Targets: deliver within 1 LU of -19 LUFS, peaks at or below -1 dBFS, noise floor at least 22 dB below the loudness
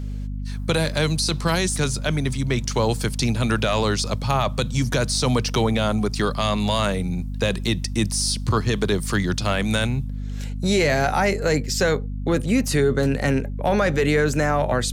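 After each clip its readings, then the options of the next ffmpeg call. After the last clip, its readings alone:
hum 50 Hz; highest harmonic 250 Hz; hum level -26 dBFS; loudness -22.0 LUFS; peak level -9.5 dBFS; loudness target -19.0 LUFS
-> -af "bandreject=f=50:t=h:w=6,bandreject=f=100:t=h:w=6,bandreject=f=150:t=h:w=6,bandreject=f=200:t=h:w=6,bandreject=f=250:t=h:w=6"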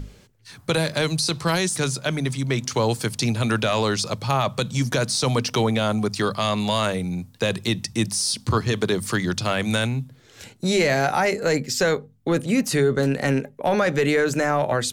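hum not found; loudness -22.5 LUFS; peak level -9.0 dBFS; loudness target -19.0 LUFS
-> -af "volume=1.5"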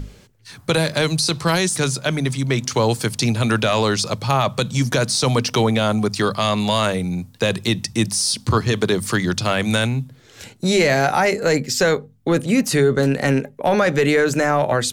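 loudness -19.0 LUFS; peak level -5.5 dBFS; noise floor -49 dBFS

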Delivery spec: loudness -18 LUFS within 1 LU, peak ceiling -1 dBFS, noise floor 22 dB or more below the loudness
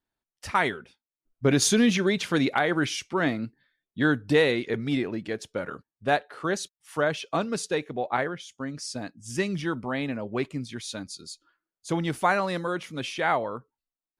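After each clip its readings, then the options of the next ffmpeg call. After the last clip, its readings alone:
loudness -27.0 LUFS; peak level -10.5 dBFS; loudness target -18.0 LUFS
-> -af "volume=2.82"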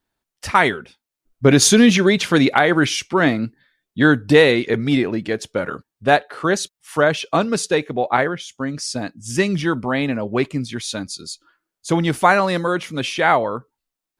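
loudness -18.0 LUFS; peak level -1.5 dBFS; noise floor -85 dBFS

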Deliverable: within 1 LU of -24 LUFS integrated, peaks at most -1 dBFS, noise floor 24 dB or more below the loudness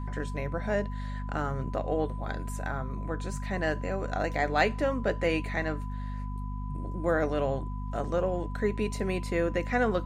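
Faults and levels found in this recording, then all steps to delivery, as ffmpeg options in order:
hum 50 Hz; highest harmonic 250 Hz; hum level -32 dBFS; steady tone 1 kHz; tone level -45 dBFS; loudness -31.0 LUFS; peak level -12.0 dBFS; loudness target -24.0 LUFS
-> -af "bandreject=f=50:t=h:w=6,bandreject=f=100:t=h:w=6,bandreject=f=150:t=h:w=6,bandreject=f=200:t=h:w=6,bandreject=f=250:t=h:w=6"
-af "bandreject=f=1000:w=30"
-af "volume=2.24"

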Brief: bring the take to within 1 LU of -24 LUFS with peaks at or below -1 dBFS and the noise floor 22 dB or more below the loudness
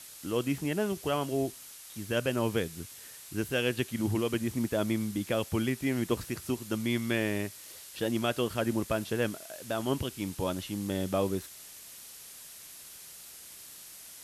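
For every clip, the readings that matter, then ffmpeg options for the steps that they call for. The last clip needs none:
noise floor -49 dBFS; noise floor target -54 dBFS; loudness -32.0 LUFS; peak level -15.0 dBFS; loudness target -24.0 LUFS
-> -af "afftdn=nr=6:nf=-49"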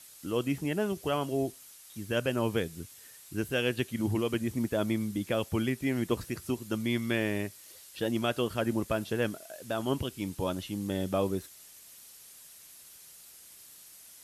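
noise floor -53 dBFS; noise floor target -54 dBFS
-> -af "afftdn=nr=6:nf=-53"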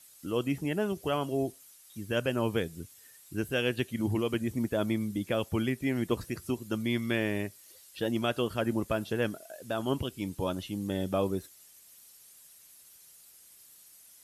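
noise floor -56 dBFS; loudness -32.0 LUFS; peak level -15.0 dBFS; loudness target -24.0 LUFS
-> -af "volume=2.51"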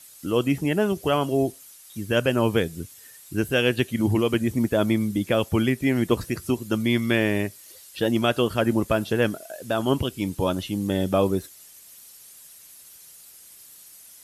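loudness -24.0 LUFS; peak level -7.0 dBFS; noise floor -48 dBFS

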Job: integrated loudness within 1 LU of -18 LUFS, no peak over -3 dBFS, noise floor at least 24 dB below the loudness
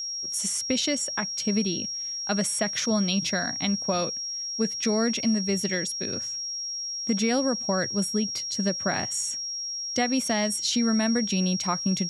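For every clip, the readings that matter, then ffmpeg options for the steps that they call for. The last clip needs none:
steady tone 5.6 kHz; tone level -30 dBFS; loudness -26.0 LUFS; peak level -12.5 dBFS; loudness target -18.0 LUFS
-> -af "bandreject=f=5600:w=30"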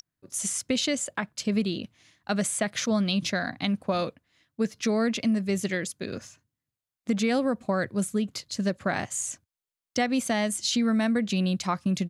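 steady tone not found; loudness -27.5 LUFS; peak level -13.5 dBFS; loudness target -18.0 LUFS
-> -af "volume=2.99"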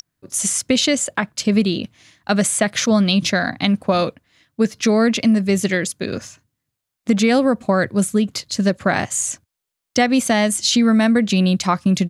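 loudness -18.0 LUFS; peak level -4.0 dBFS; noise floor -82 dBFS

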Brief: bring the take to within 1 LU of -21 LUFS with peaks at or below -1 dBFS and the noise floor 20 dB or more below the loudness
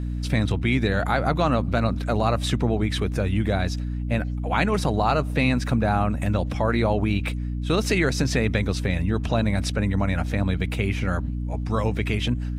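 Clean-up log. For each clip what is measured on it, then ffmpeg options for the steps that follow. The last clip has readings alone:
hum 60 Hz; highest harmonic 300 Hz; hum level -25 dBFS; loudness -24.0 LUFS; peak level -7.5 dBFS; loudness target -21.0 LUFS
-> -af "bandreject=f=60:t=h:w=6,bandreject=f=120:t=h:w=6,bandreject=f=180:t=h:w=6,bandreject=f=240:t=h:w=6,bandreject=f=300:t=h:w=6"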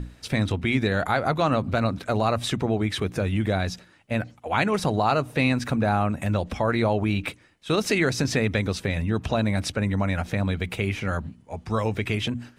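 hum not found; loudness -25.0 LUFS; peak level -8.0 dBFS; loudness target -21.0 LUFS
-> -af "volume=1.58"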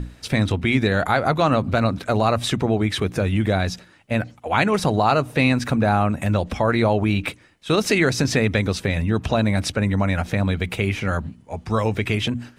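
loudness -21.0 LUFS; peak level -4.0 dBFS; noise floor -51 dBFS

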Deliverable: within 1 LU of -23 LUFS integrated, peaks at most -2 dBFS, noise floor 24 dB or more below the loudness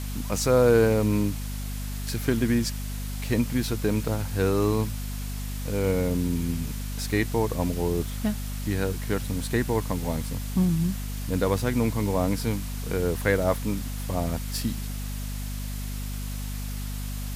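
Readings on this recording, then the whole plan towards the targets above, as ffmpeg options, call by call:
hum 50 Hz; highest harmonic 250 Hz; hum level -30 dBFS; noise floor -32 dBFS; noise floor target -51 dBFS; loudness -27.0 LUFS; peak level -8.0 dBFS; loudness target -23.0 LUFS
-> -af "bandreject=f=50:t=h:w=4,bandreject=f=100:t=h:w=4,bandreject=f=150:t=h:w=4,bandreject=f=200:t=h:w=4,bandreject=f=250:t=h:w=4"
-af "afftdn=nr=19:nf=-32"
-af "volume=1.58"

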